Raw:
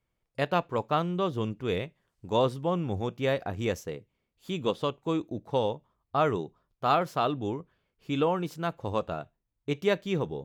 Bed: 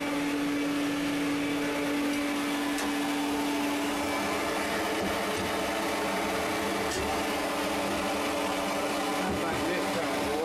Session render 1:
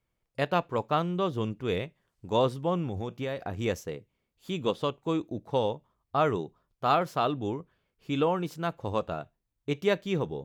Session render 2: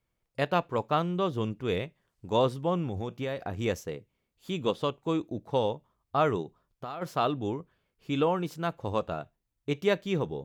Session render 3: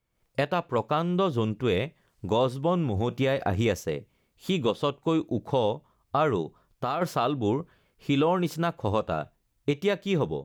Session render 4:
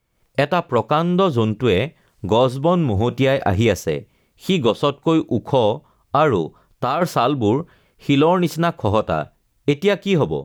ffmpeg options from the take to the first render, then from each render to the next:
-filter_complex "[0:a]asettb=1/sr,asplit=3[a][b][c];[a]atrim=end=2.874[d];[b]atrim=start=2.87:end=3.59,asetpts=PTS-STARTPTS,afade=t=in:d=0.004:c=qsin,afade=t=out:st=0.716:d=0.004:c=qsin,acompressor=threshold=-28dB:ratio=6:attack=3.2:release=140:knee=1:detection=peak[e];[c]atrim=start=3.586[f];[d][e]acrossfade=d=0.004:c1=hsin:c2=qsin[g];[g][f]acrossfade=d=0.004:c1=qsin:c2=hsin"
-filter_complex "[0:a]asplit=3[a][b][c];[a]afade=t=out:st=6.42:d=0.02[d];[b]acompressor=threshold=-33dB:ratio=16:attack=3.2:release=140:knee=1:detection=peak,afade=t=in:st=6.42:d=0.02,afade=t=out:st=7.01:d=0.02[e];[c]afade=t=in:st=7.01:d=0.02[f];[d][e][f]amix=inputs=3:normalize=0"
-af "alimiter=limit=-23.5dB:level=0:latency=1:release=464,dynaudnorm=f=110:g=3:m=9.5dB"
-af "volume=8.5dB"

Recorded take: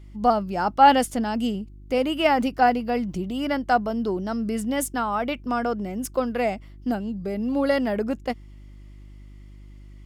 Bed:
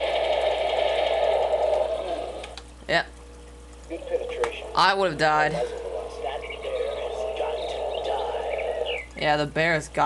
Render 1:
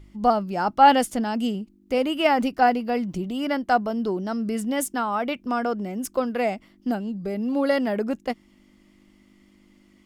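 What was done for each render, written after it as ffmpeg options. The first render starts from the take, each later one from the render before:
-af "bandreject=f=50:t=h:w=4,bandreject=f=100:t=h:w=4,bandreject=f=150:t=h:w=4"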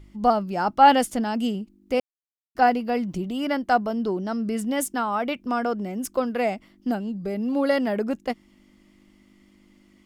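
-filter_complex "[0:a]asettb=1/sr,asplit=3[a][b][c];[a]atrim=end=3.954[d];[b]atrim=start=3.95:end=4.59,asetpts=PTS-STARTPTS,afade=t=in:d=0.004:c=qsin,afade=t=out:st=0.636:d=0.004:c=qsin,highshelf=f=9.2k:g=-5[e];[c]atrim=start=4.586[f];[d][e]acrossfade=d=0.004:c1=hsin:c2=qsin[g];[g][f]acrossfade=d=0.004:c1=qsin:c2=hsin,asplit=3[h][i][j];[h]atrim=end=2,asetpts=PTS-STARTPTS,afade=t=out:st=1.996:d=0.004:c=hsin[k];[i]atrim=start=2:end=2.55,asetpts=PTS-STARTPTS,volume=0[l];[j]atrim=start=2.55,asetpts=PTS-STARTPTS,afade=t=in:d=0.004:c=hsin[m];[k][l][m]concat=n=3:v=0:a=1"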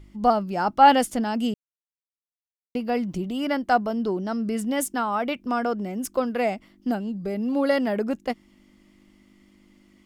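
-filter_complex "[0:a]asplit=3[a][b][c];[a]atrim=end=1.54,asetpts=PTS-STARTPTS,afade=t=out:st=1.536:d=0.004:c=hsin[d];[b]atrim=start=1.54:end=2.75,asetpts=PTS-STARTPTS,volume=0[e];[c]atrim=start=2.75,asetpts=PTS-STARTPTS,afade=t=in:d=0.004:c=hsin[f];[d][e][f]concat=n=3:v=0:a=1"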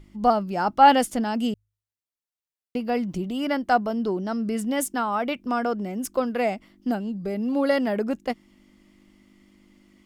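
-af "bandreject=f=51.73:t=h:w=4,bandreject=f=103.46:t=h:w=4"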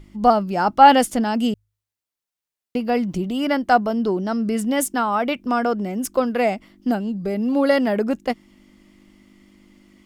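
-af "volume=4.5dB,alimiter=limit=-1dB:level=0:latency=1"

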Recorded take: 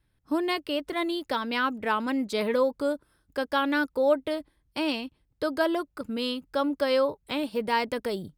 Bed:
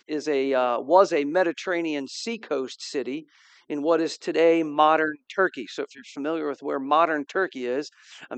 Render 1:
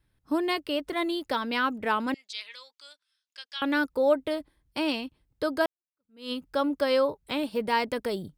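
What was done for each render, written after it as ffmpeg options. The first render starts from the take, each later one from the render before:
-filter_complex "[0:a]asettb=1/sr,asplit=3[a][b][c];[a]atrim=end=2.144[d];[b]atrim=start=2.14:end=3.62,asetpts=PTS-STARTPTS,afade=t=in:d=0.004:c=qsin,afade=t=out:st=1.476:d=0.004:c=qsin,asuperpass=centerf=4200:order=4:qfactor=1[e];[c]atrim=start=3.616[f];[d][e]acrossfade=d=0.004:c1=hsin:c2=qsin[g];[g][f]acrossfade=d=0.004:c1=qsin:c2=hsin,asplit=2[h][i];[h]atrim=end=5.66,asetpts=PTS-STARTPTS,afade=t=out:st=5.656:d=0.004:c=hsin[j];[i]atrim=start=5.66,asetpts=PTS-STARTPTS,afade=t=in:d=0.66:c=exp[k];[j][k]concat=n=2:v=0:a=1"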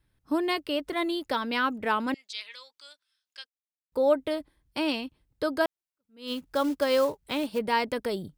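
-filter_complex "[0:a]asettb=1/sr,asplit=3[a][b][c];[a]atrim=end=6.274[d];[b]atrim=start=6.27:end=7.59,asetpts=PTS-STARTPTS,afade=t=in:d=0.004:c=qsin,afade=t=out:st=1.316:d=0.004:c=qsin,acrusher=bits=5:mode=log:mix=0:aa=0.000001[e];[c]atrim=start=7.586[f];[d][e]acrossfade=d=0.004:c1=hsin:c2=qsin[g];[g][f]acrossfade=d=0.004:c1=qsin:c2=hsin,asplit=3[h][i][j];[h]atrim=end=3.47,asetpts=PTS-STARTPTS,afade=t=out:st=3.466:d=0.004:c=hsin[k];[i]atrim=start=3.47:end=3.92,asetpts=PTS-STARTPTS,volume=0[l];[j]atrim=start=3.92,asetpts=PTS-STARTPTS,afade=t=in:d=0.004:c=hsin[m];[k][l][m]concat=n=3:v=0:a=1"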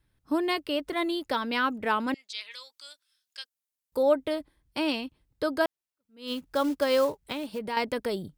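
-filter_complex "[0:a]asettb=1/sr,asplit=3[a][b][c];[a]atrim=end=2.514[d];[b]atrim=start=2.51:end=4.03,asetpts=PTS-STARTPTS,afade=t=in:d=0.004:c=qsin,afade=t=out:st=1.516:d=0.004:c=qsin,aemphasis=mode=production:type=cd[e];[c]atrim=start=4.026[f];[d][e]acrossfade=d=0.004:c1=hsin:c2=qsin[g];[g][f]acrossfade=d=0.004:c1=qsin:c2=hsin,asettb=1/sr,asplit=3[h][i][j];[h]atrim=end=7.324[k];[i]atrim=start=7.32:end=7.77,asetpts=PTS-STARTPTS,afade=t=in:d=0.004:c=qsin,afade=t=out:st=0.446:d=0.004:c=qsin,acompressor=threshold=-33dB:ratio=2:attack=3.2:release=140:knee=1:detection=peak[l];[j]atrim=start=7.766[m];[k][l]acrossfade=d=0.004:c1=hsin:c2=qsin[n];[n][m]acrossfade=d=0.004:c1=qsin:c2=hsin"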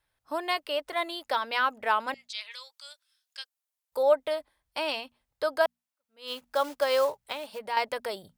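-af "lowshelf=f=440:t=q:w=1.5:g=-12,bandreject=f=60:t=h:w=6,bandreject=f=120:t=h:w=6,bandreject=f=180:t=h:w=6,bandreject=f=240:t=h:w=6"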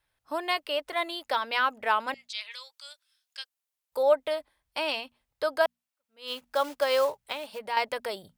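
-af "equalizer=f=2.6k:w=1.5:g=2"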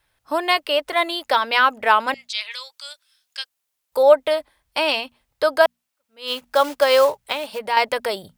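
-af "volume=9.5dB,alimiter=limit=-2dB:level=0:latency=1"

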